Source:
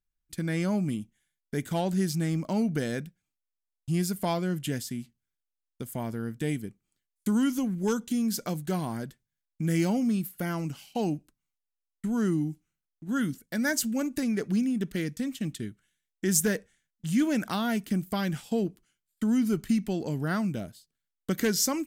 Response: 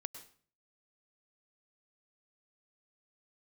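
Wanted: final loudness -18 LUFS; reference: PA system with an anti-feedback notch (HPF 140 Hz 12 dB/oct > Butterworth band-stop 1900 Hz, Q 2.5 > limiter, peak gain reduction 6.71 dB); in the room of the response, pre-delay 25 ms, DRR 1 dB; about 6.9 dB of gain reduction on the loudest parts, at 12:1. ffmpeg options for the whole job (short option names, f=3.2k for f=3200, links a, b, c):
-filter_complex "[0:a]acompressor=threshold=-27dB:ratio=12,asplit=2[a][b];[1:a]atrim=start_sample=2205,adelay=25[c];[b][c]afir=irnorm=-1:irlink=0,volume=1.5dB[d];[a][d]amix=inputs=2:normalize=0,highpass=140,asuperstop=centerf=1900:order=8:qfactor=2.5,volume=15.5dB,alimiter=limit=-8dB:level=0:latency=1"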